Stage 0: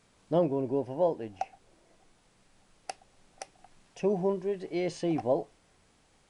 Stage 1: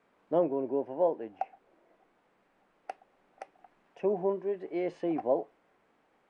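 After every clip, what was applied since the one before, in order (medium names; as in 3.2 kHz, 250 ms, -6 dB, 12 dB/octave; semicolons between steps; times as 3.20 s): three-band isolator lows -20 dB, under 220 Hz, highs -22 dB, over 2.4 kHz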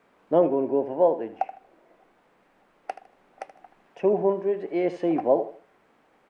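feedback delay 78 ms, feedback 30%, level -13.5 dB; trim +7 dB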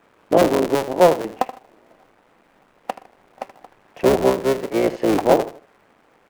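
cycle switcher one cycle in 3, muted; trim +7.5 dB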